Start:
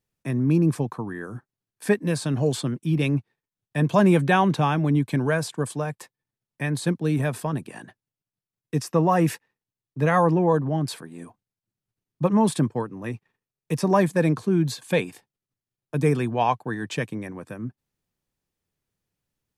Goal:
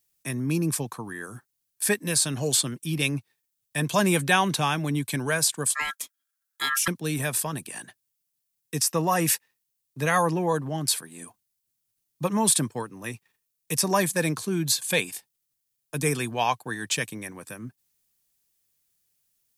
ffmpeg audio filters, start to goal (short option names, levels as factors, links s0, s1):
-filter_complex "[0:a]asettb=1/sr,asplit=3[s0][s1][s2];[s0]atrim=end=5.744[s3];[s1]atrim=start=5.74:end=6.88,asetpts=PTS-STARTPTS,afade=t=in:d=0.004:c=qsin,afade=t=out:st=1.136:d=0.004:c=qsin,aeval=exprs='val(0)*sin(2*PI*1500*n/s)':c=same[s4];[s2]atrim=start=6.876[s5];[s3][s4]acrossfade=d=0.004:c1=hsin:c2=qsin[s6];[s6][s5]acrossfade=d=0.004:c1=qsin:c2=hsin,crystalizer=i=9:c=0,volume=0.473"